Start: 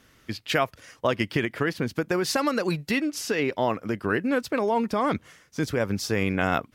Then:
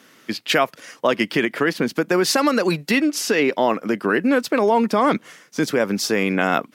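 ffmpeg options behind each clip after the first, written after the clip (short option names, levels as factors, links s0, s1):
-filter_complex "[0:a]asplit=2[s0][s1];[s1]alimiter=limit=0.133:level=0:latency=1,volume=1[s2];[s0][s2]amix=inputs=2:normalize=0,highpass=f=180:w=0.5412,highpass=f=180:w=1.3066,volume=1.26"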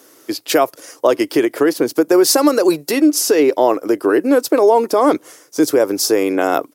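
-af "firequalizer=gain_entry='entry(130,0);entry(200,-12);entry(300,10);entry(1800,-3);entry(2900,-3);entry(5200,7);entry(11000,14)':delay=0.05:min_phase=1,volume=0.841"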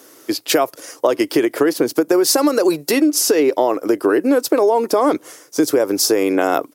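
-af "acompressor=threshold=0.224:ratio=6,volume=1.26"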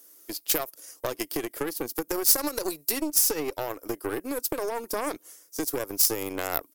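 -af "aeval=exprs='0.891*(cos(1*acos(clip(val(0)/0.891,-1,1)))-cos(1*PI/2))+0.355*(cos(2*acos(clip(val(0)/0.891,-1,1)))-cos(2*PI/2))+0.0631*(cos(7*acos(clip(val(0)/0.891,-1,1)))-cos(7*PI/2))':c=same,aemphasis=mode=production:type=75fm,volume=0.188"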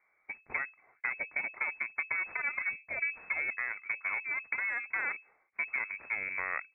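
-af "lowpass=f=2200:t=q:w=0.5098,lowpass=f=2200:t=q:w=0.6013,lowpass=f=2200:t=q:w=0.9,lowpass=f=2200:t=q:w=2.563,afreqshift=-2600,volume=0.668"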